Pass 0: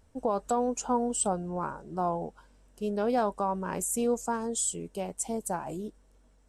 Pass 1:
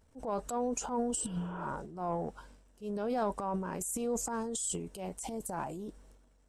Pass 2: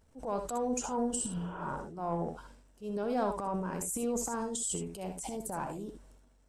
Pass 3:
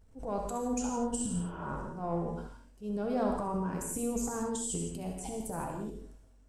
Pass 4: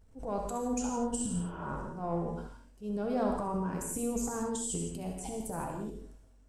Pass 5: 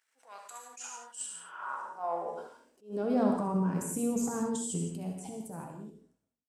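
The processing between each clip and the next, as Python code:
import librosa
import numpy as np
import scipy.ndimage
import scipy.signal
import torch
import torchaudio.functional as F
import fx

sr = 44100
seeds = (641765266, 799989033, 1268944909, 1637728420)

y1 = fx.transient(x, sr, attack_db=-8, sustain_db=10)
y1 = fx.spec_repair(y1, sr, seeds[0], start_s=1.2, length_s=0.44, low_hz=300.0, high_hz=3600.0, source='both')
y1 = F.gain(torch.from_numpy(y1), -5.0).numpy()
y2 = fx.room_early_taps(y1, sr, ms=(64, 76), db=(-9.5, -10.5))
y3 = fx.low_shelf(y2, sr, hz=200.0, db=11.0)
y3 = fx.rev_gated(y3, sr, seeds[1], gate_ms=190, shape='flat', drr_db=2.5)
y3 = F.gain(torch.from_numpy(y3), -3.5).numpy()
y4 = y3
y5 = fx.fade_out_tail(y4, sr, length_s=2.11)
y5 = fx.filter_sweep_highpass(y5, sr, from_hz=1800.0, to_hz=160.0, start_s=1.28, end_s=3.56, q=1.9)
y5 = fx.attack_slew(y5, sr, db_per_s=200.0)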